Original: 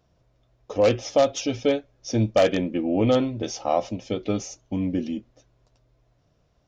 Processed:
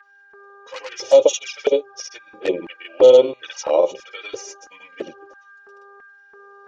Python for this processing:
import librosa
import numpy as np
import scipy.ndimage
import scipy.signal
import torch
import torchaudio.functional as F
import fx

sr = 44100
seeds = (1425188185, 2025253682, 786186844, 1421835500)

y = x + 0.76 * np.pad(x, (int(2.1 * sr / 1000.0), 0))[:len(x)]
y = fx.granulator(y, sr, seeds[0], grain_ms=100.0, per_s=20.0, spray_ms=100.0, spread_st=0)
y = fx.dmg_buzz(y, sr, base_hz=400.0, harmonics=4, level_db=-49.0, tilt_db=0, odd_only=False)
y = fx.filter_lfo_highpass(y, sr, shape='square', hz=1.5, low_hz=380.0, high_hz=1700.0, q=1.7)
y = fx.env_flanger(y, sr, rest_ms=5.1, full_db=-18.5)
y = y * librosa.db_to_amplitude(4.5)